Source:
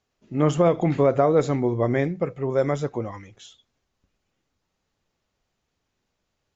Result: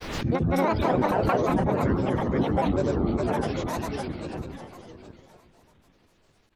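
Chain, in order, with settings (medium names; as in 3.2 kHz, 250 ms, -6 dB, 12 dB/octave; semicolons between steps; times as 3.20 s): backward echo that repeats 168 ms, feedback 71%, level -1 dB; compression 4:1, threshold -32 dBFS, peak gain reduction 17 dB; granulator, grains 20 per s, pitch spread up and down by 12 st; harmony voices -7 st -2 dB; delay 686 ms -22 dB; swell ahead of each attack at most 55 dB/s; trim +7 dB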